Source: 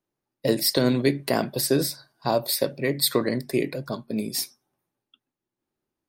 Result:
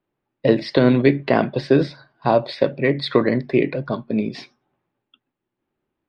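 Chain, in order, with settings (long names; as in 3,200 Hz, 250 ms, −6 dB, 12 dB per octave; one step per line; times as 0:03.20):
low-pass filter 3,200 Hz 24 dB per octave
level +6.5 dB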